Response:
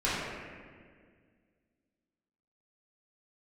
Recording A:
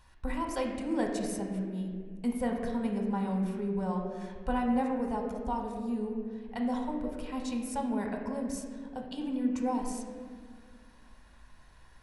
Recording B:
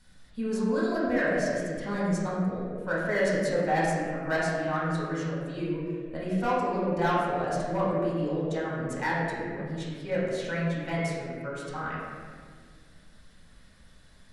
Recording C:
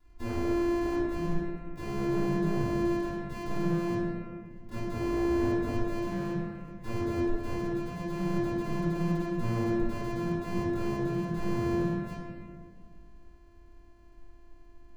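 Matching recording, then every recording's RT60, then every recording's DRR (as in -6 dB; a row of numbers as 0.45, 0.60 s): C; 1.9, 1.9, 1.9 s; 1.0, -7.0, -11.0 dB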